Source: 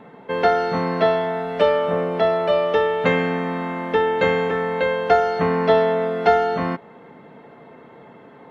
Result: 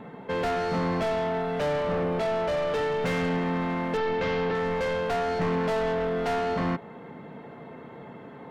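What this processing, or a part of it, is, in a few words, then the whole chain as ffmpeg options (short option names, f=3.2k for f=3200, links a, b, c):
saturation between pre-emphasis and de-emphasis: -filter_complex "[0:a]highshelf=f=2.1k:g=9,asoftclip=type=tanh:threshold=-24dB,highshelf=f=2.1k:g=-9,asettb=1/sr,asplit=3[a][b][c];[a]atrim=end=3.974[d];[b]atrim=start=3.97:end=4.55,asetpts=PTS-STARTPTS,afade=t=in:d=0.004:c=qsin,afade=t=out:st=0.576:d=0.004:c=qsin,lowpass=f=5.3k:w=0.5412,lowpass=f=5.3k:w=1.3066[e];[c]atrim=start=4.546[f];[d][e]acrossfade=d=0.004:c1=hsin:c2=qsin[g];[g][f]acrossfade=d=0.004:c1=qsin:c2=hsin,bass=f=250:g=5,treble=f=4k:g=0"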